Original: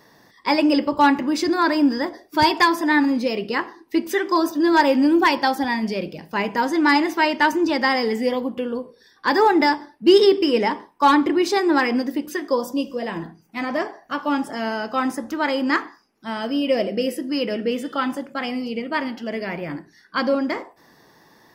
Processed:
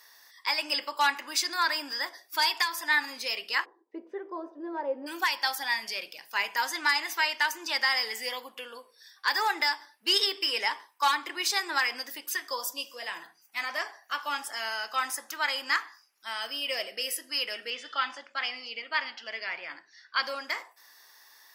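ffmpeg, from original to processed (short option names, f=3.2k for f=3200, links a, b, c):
-filter_complex "[0:a]asplit=3[a][b][c];[a]afade=t=out:st=3.64:d=0.02[d];[b]lowpass=f=470:t=q:w=3,afade=t=in:st=3.64:d=0.02,afade=t=out:st=5.06:d=0.02[e];[c]afade=t=in:st=5.06:d=0.02[f];[d][e][f]amix=inputs=3:normalize=0,asettb=1/sr,asplit=3[g][h][i];[g]atrim=end=17.704[j];[h]atrim=start=17.7:end=20.23,asetpts=PTS-STARTPTS,afade=t=in:d=0.004:c=qsin,afade=t=out:st=2.526:d=0.004:c=qsin,lowpass=f=5.4k:w=0.5412,lowpass=f=5.4k:w=1.3066[k];[i]atrim=start=20.226[l];[j][k]acrossfade=d=0.004:c1=hsin:c2=qsin[m];[m][l]acrossfade=d=0.004:c1=qsin:c2=hsin,highpass=1.3k,aemphasis=mode=production:type=cd,alimiter=limit=-12.5dB:level=0:latency=1:release=327,volume=-1.5dB"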